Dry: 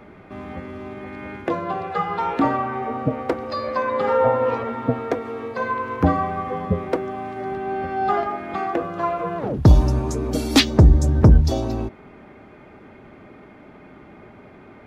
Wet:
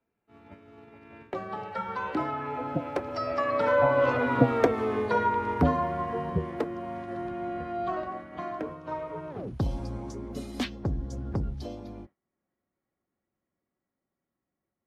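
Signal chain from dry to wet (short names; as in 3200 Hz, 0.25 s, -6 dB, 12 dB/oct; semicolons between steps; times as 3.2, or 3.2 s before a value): Doppler pass-by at 4.61, 35 m/s, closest 15 m; expander -44 dBFS; three-band squash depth 40%; gain +5 dB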